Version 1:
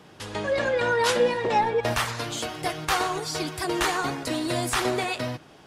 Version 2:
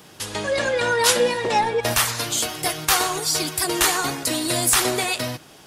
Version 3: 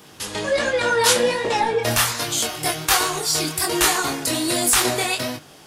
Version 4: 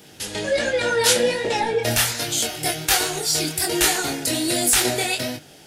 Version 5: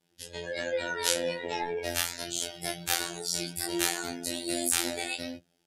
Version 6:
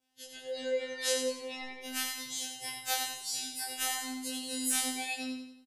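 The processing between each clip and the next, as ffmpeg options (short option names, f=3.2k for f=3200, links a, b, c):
-af "aemphasis=mode=production:type=75kf,volume=1.5dB"
-af "flanger=delay=19.5:depth=6.7:speed=1.3,volume=4dB"
-af "equalizer=f=1.1k:t=o:w=0.36:g=-14"
-af "afftdn=nr=18:nf=-33,afftfilt=real='hypot(re,im)*cos(PI*b)':imag='0':win_size=2048:overlap=0.75,volume=-6.5dB"
-filter_complex "[0:a]asplit=2[a][b];[b]aecho=0:1:90|180|270|360|450:0.501|0.221|0.097|0.0427|0.0188[c];[a][c]amix=inputs=2:normalize=0,afftfilt=real='re*2.45*eq(mod(b,6),0)':imag='im*2.45*eq(mod(b,6),0)':win_size=2048:overlap=0.75,volume=-4.5dB"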